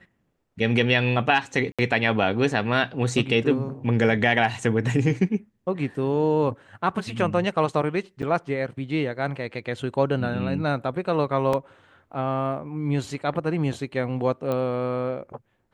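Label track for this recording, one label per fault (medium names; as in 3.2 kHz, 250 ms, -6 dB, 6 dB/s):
1.720000	1.790000	dropout 66 ms
8.220000	8.230000	dropout 8.1 ms
11.530000	11.530000	dropout 4.1 ms
14.520000	14.520000	pop -16 dBFS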